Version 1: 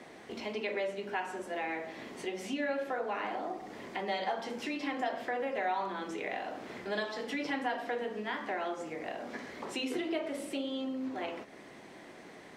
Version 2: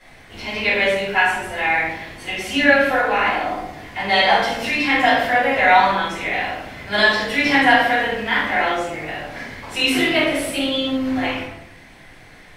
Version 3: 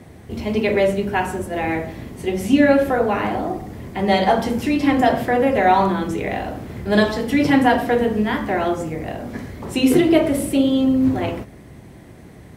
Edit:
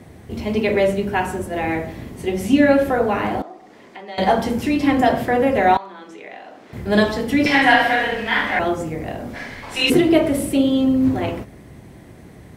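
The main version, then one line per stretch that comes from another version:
3
3.42–4.18 s: from 1
5.77–6.73 s: from 1
7.46–8.59 s: from 2
9.35–9.90 s: from 2

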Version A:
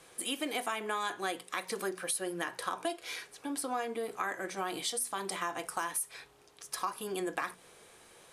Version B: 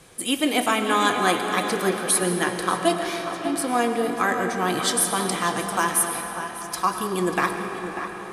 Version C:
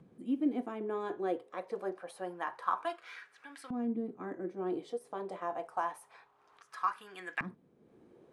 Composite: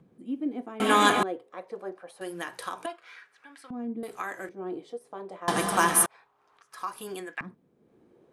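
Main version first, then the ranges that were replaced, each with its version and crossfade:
C
0.80–1.23 s: from B
2.21–2.86 s: from A
4.03–4.49 s: from A
5.48–6.06 s: from B
6.82–7.24 s: from A, crossfade 0.24 s

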